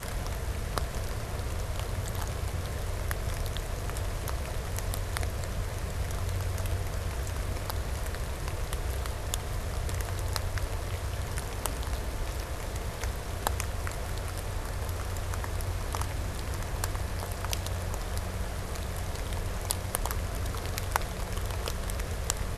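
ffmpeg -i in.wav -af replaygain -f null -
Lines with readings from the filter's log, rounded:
track_gain = +20.2 dB
track_peak = 0.416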